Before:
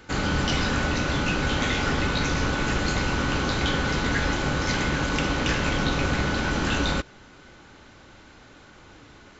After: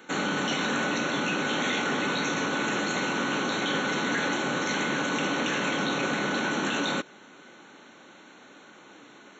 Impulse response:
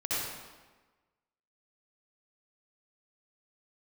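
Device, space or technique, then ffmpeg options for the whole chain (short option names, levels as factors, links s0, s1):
PA system with an anti-feedback notch: -af "highpass=f=190:w=0.5412,highpass=f=190:w=1.3066,asuperstop=centerf=4900:order=8:qfactor=4.4,alimiter=limit=0.112:level=0:latency=1:release=11"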